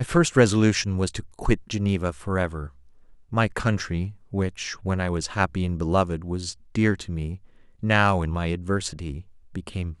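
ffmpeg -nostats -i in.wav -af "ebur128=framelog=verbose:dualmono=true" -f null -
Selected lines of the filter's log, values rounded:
Integrated loudness:
  I:         -21.9 LUFS
  Threshold: -32.4 LUFS
Loudness range:
  LRA:         2.6 LU
  Threshold: -43.1 LUFS
  LRA low:   -24.5 LUFS
  LRA high:  -21.8 LUFS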